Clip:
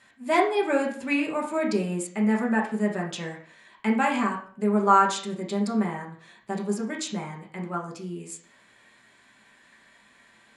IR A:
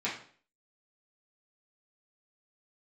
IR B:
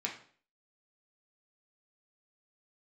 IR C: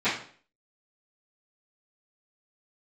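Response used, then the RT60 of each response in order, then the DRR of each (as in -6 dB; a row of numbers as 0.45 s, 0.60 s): B; 0.50 s, 0.50 s, 0.50 s; -8.5 dB, -1.5 dB, -18.5 dB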